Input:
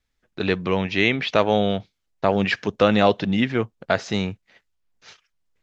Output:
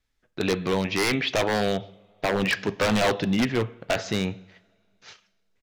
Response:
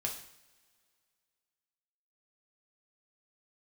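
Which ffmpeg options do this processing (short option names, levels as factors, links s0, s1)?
-filter_complex "[0:a]aresample=32000,aresample=44100,asplit=2[s0][s1];[1:a]atrim=start_sample=2205[s2];[s1][s2]afir=irnorm=-1:irlink=0,volume=0.299[s3];[s0][s3]amix=inputs=2:normalize=0,aeval=exprs='0.224*(abs(mod(val(0)/0.224+3,4)-2)-1)':c=same,volume=0.75"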